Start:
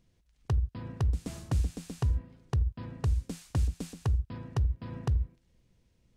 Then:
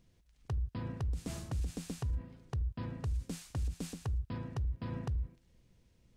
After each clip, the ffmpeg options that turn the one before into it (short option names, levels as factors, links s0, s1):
-af "alimiter=level_in=2:limit=0.0631:level=0:latency=1:release=38,volume=0.501,volume=1.12"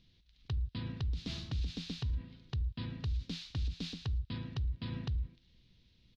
-af "firequalizer=gain_entry='entry(240,0);entry(550,-8);entry(3800,14);entry(8300,-20)':delay=0.05:min_phase=1"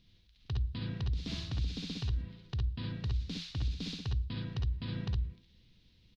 -af "aecho=1:1:56|66:0.447|0.668"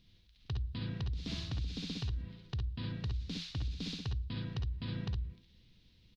-af "acompressor=threshold=0.0224:ratio=4"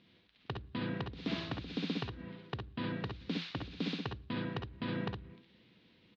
-af "highpass=270,lowpass=2100,volume=3.35"